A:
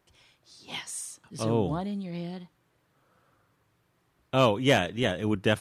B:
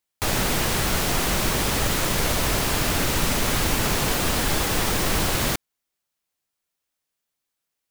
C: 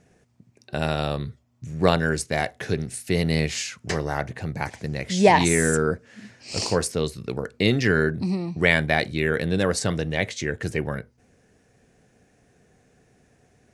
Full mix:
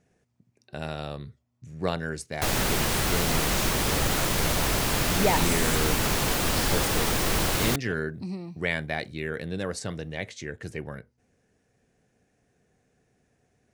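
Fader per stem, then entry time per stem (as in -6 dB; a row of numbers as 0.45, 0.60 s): -19.5, -2.5, -9.0 dB; 2.40, 2.20, 0.00 s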